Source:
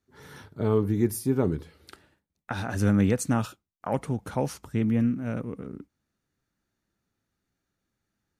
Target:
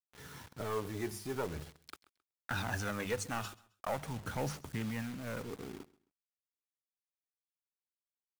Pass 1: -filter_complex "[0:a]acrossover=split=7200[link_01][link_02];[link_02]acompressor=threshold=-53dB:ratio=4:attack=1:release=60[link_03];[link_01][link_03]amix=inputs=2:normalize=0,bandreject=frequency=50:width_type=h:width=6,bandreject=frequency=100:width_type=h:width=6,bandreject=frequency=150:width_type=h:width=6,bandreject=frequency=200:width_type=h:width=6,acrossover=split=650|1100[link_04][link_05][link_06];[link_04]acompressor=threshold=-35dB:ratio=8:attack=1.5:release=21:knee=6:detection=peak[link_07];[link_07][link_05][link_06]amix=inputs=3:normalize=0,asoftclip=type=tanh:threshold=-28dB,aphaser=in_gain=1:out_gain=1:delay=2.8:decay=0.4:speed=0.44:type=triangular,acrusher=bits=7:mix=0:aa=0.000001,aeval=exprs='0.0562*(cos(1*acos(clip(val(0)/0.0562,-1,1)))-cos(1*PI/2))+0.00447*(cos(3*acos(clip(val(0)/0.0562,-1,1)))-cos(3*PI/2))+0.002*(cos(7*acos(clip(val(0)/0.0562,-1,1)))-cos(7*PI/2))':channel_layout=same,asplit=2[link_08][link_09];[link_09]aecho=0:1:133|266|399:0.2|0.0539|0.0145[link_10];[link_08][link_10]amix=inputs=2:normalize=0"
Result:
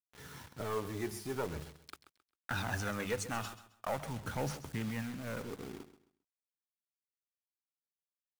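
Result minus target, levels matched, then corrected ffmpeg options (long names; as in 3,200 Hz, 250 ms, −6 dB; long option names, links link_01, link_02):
echo-to-direct +7.5 dB
-filter_complex "[0:a]acrossover=split=7200[link_01][link_02];[link_02]acompressor=threshold=-53dB:ratio=4:attack=1:release=60[link_03];[link_01][link_03]amix=inputs=2:normalize=0,bandreject=frequency=50:width_type=h:width=6,bandreject=frequency=100:width_type=h:width=6,bandreject=frequency=150:width_type=h:width=6,bandreject=frequency=200:width_type=h:width=6,acrossover=split=650|1100[link_04][link_05][link_06];[link_04]acompressor=threshold=-35dB:ratio=8:attack=1.5:release=21:knee=6:detection=peak[link_07];[link_07][link_05][link_06]amix=inputs=3:normalize=0,asoftclip=type=tanh:threshold=-28dB,aphaser=in_gain=1:out_gain=1:delay=2.8:decay=0.4:speed=0.44:type=triangular,acrusher=bits=7:mix=0:aa=0.000001,aeval=exprs='0.0562*(cos(1*acos(clip(val(0)/0.0562,-1,1)))-cos(1*PI/2))+0.00447*(cos(3*acos(clip(val(0)/0.0562,-1,1)))-cos(3*PI/2))+0.002*(cos(7*acos(clip(val(0)/0.0562,-1,1)))-cos(7*PI/2))':channel_layout=same,asplit=2[link_08][link_09];[link_09]aecho=0:1:133|266:0.0841|0.0227[link_10];[link_08][link_10]amix=inputs=2:normalize=0"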